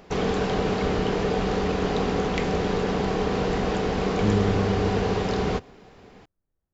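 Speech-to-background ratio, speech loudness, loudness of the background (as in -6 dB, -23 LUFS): -2.0 dB, -27.5 LUFS, -25.5 LUFS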